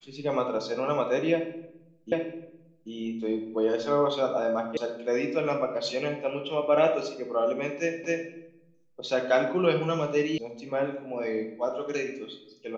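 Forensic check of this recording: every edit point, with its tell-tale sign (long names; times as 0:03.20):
0:02.12: the same again, the last 0.79 s
0:04.77: cut off before it has died away
0:08.04: the same again, the last 0.26 s
0:10.38: cut off before it has died away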